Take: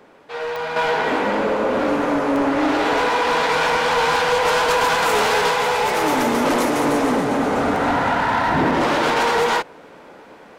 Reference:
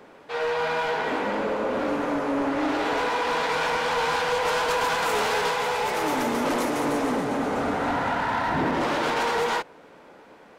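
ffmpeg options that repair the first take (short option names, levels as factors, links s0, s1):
-af "adeclick=t=4,asetnsamples=n=441:p=0,asendcmd='0.76 volume volume -6.5dB',volume=1"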